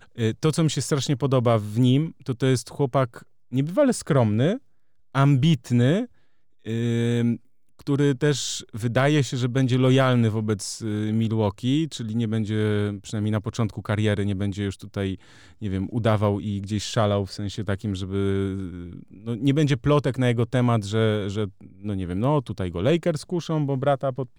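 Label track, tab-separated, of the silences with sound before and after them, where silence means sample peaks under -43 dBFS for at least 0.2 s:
3.230000	3.510000	silence
4.580000	5.150000	silence
6.060000	6.650000	silence
7.370000	7.790000	silence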